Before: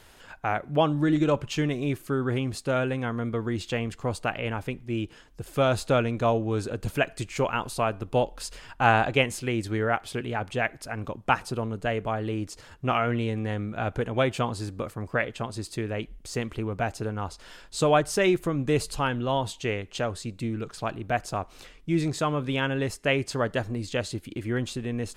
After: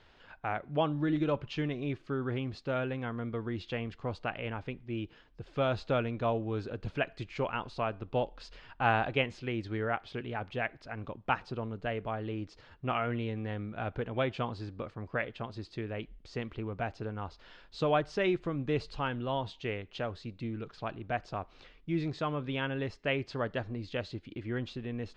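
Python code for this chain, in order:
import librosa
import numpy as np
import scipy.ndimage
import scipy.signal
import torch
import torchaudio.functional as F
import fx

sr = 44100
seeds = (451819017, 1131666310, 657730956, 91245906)

y = scipy.signal.sosfilt(scipy.signal.butter(4, 4500.0, 'lowpass', fs=sr, output='sos'), x)
y = y * librosa.db_to_amplitude(-7.0)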